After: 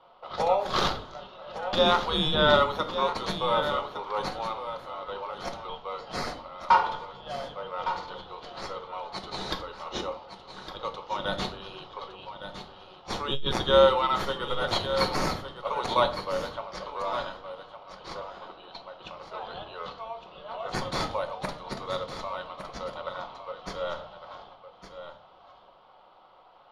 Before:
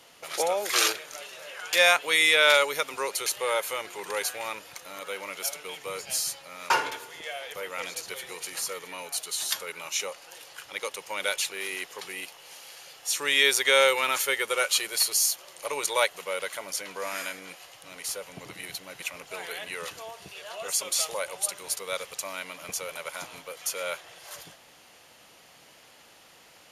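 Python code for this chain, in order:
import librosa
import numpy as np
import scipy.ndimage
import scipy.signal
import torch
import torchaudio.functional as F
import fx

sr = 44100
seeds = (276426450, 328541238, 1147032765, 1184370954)

p1 = fx.env_lowpass(x, sr, base_hz=2200.0, full_db=-24.0)
p2 = scipy.signal.sosfilt(scipy.signal.butter(2, 800.0, 'highpass', fs=sr, output='sos'), p1)
p3 = fx.spec_gate(p2, sr, threshold_db=-30, keep='strong')
p4 = scipy.signal.sosfilt(scipy.signal.cheby1(2, 1.0, [1200.0, 3500.0], 'bandstop', fs=sr, output='sos'), p3)
p5 = fx.sample_hold(p4, sr, seeds[0], rate_hz=3300.0, jitter_pct=0)
p6 = p4 + (p5 * 10.0 ** (-8.5 / 20.0))
p7 = fx.air_absorb(p6, sr, metres=330.0)
p8 = p7 + fx.echo_single(p7, sr, ms=1160, db=-10.5, dry=0)
p9 = fx.room_shoebox(p8, sr, seeds[1], volume_m3=350.0, walls='furnished', distance_m=1.0)
p10 = fx.transformer_sat(p9, sr, knee_hz=90.0)
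y = p10 * 10.0 ** (6.0 / 20.0)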